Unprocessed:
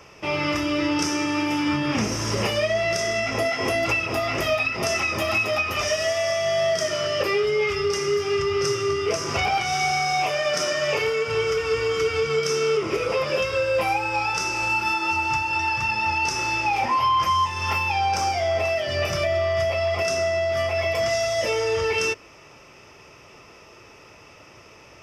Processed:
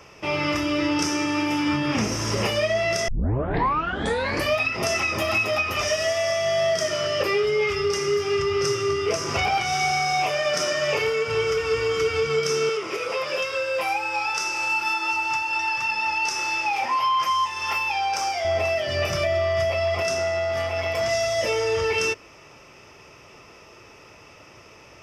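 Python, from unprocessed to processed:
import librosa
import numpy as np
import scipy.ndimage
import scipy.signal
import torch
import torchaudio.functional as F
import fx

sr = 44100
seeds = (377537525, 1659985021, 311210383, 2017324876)

y = fx.highpass(x, sr, hz=670.0, slope=6, at=(12.69, 18.45))
y = fx.transformer_sat(y, sr, knee_hz=720.0, at=(20.0, 21.09))
y = fx.edit(y, sr, fx.tape_start(start_s=3.08, length_s=1.48), tone=tone)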